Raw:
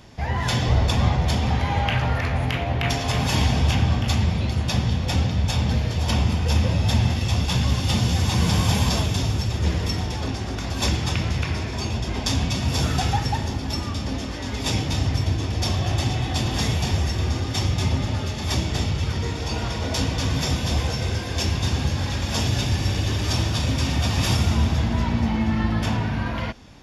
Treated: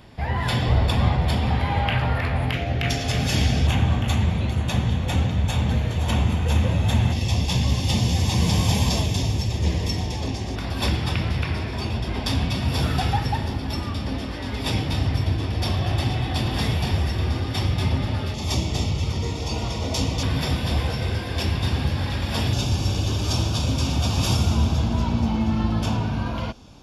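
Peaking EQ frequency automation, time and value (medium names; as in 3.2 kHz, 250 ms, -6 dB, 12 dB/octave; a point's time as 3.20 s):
peaking EQ -14.5 dB 0.36 oct
6.2 kHz
from 2.53 s 990 Hz
from 3.67 s 5.1 kHz
from 7.12 s 1.4 kHz
from 10.56 s 6.6 kHz
from 18.34 s 1.6 kHz
from 20.23 s 6.5 kHz
from 22.53 s 1.9 kHz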